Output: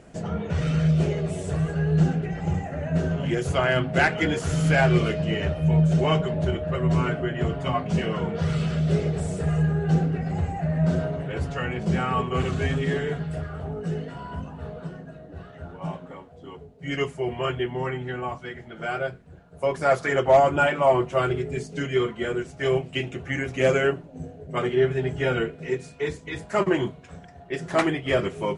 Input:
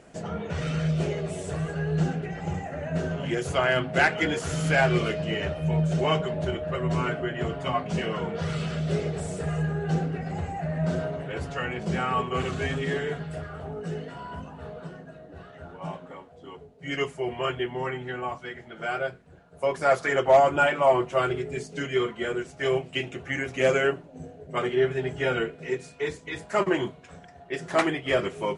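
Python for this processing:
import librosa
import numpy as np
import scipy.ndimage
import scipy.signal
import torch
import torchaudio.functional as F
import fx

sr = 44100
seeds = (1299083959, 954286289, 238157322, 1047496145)

y = fx.low_shelf(x, sr, hz=230.0, db=8.0)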